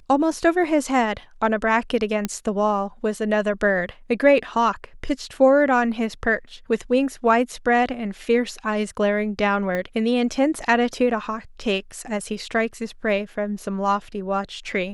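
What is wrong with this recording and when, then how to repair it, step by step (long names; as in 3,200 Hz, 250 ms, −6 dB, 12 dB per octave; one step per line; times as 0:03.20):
0:02.25: click −9 dBFS
0:09.75: click −14 dBFS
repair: click removal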